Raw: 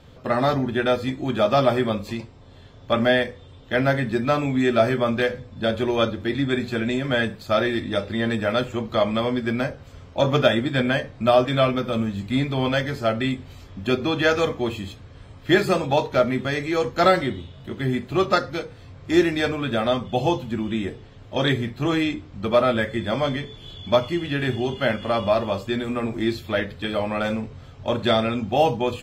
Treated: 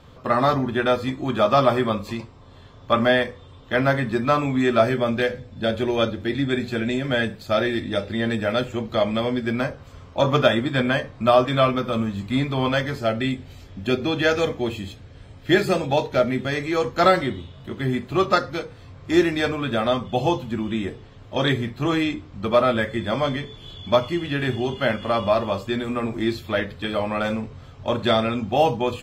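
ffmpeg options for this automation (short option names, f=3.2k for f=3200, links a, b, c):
-af "asetnsamples=n=441:p=0,asendcmd='4.84 equalizer g -3.5;9.54 equalizer g 5.5;12.98 equalizer g -5;16.52 equalizer g 3',equalizer=f=1.1k:t=o:w=0.43:g=7.5"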